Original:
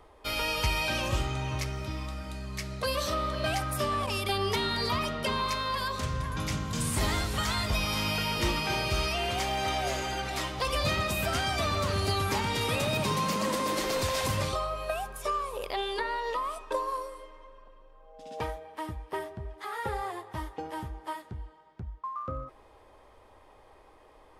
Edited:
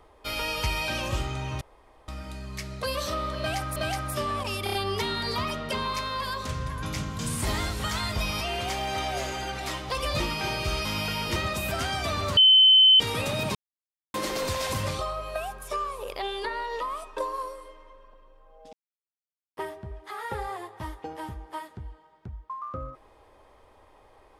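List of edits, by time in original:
1.61–2.08 s: room tone
3.39–3.76 s: loop, 2 plays
4.27 s: stutter 0.03 s, 4 plays
7.95–8.46 s: swap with 9.11–10.90 s
11.91–12.54 s: bleep 3.06 kHz -12.5 dBFS
13.09–13.68 s: mute
18.27–19.11 s: mute

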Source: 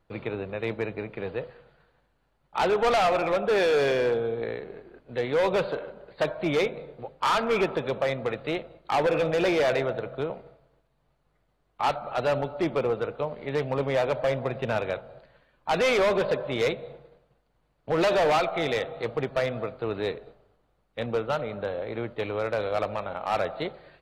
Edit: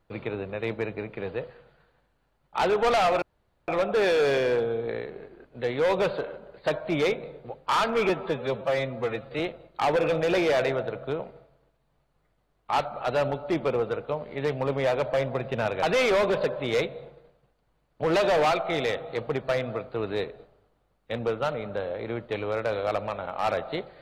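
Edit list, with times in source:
3.22 s: insert room tone 0.46 s
7.63–8.50 s: stretch 1.5×
14.93–15.70 s: delete

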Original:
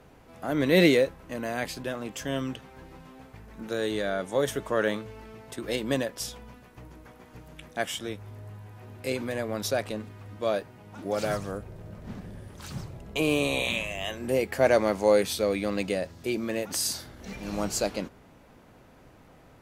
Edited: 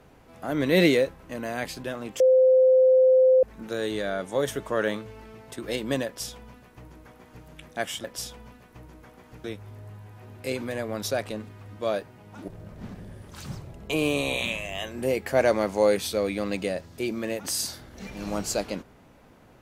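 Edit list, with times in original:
2.20–3.43 s: bleep 517 Hz -14 dBFS
6.06–7.46 s: copy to 8.04 s
11.08–11.74 s: delete

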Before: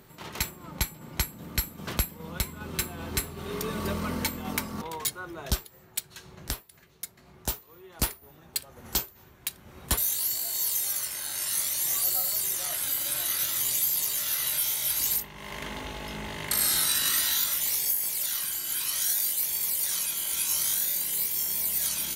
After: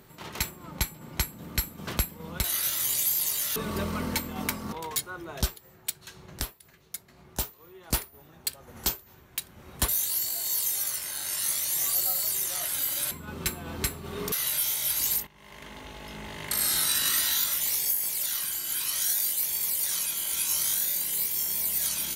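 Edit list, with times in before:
2.44–3.65 s: swap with 13.20–14.32 s
15.27–16.97 s: fade in, from -13 dB

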